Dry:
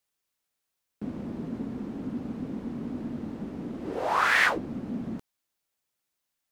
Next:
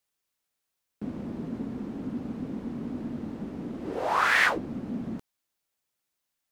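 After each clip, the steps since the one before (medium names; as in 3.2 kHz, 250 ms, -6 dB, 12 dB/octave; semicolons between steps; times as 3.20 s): no audible change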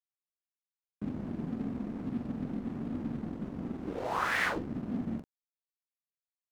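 bass shelf 430 Hz +11 dB; crossover distortion -37 dBFS; doubling 44 ms -7 dB; trim -8.5 dB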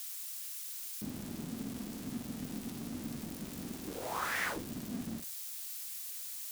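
zero-crossing glitches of -25 dBFS; treble shelf 11 kHz -5 dB; trim -5.5 dB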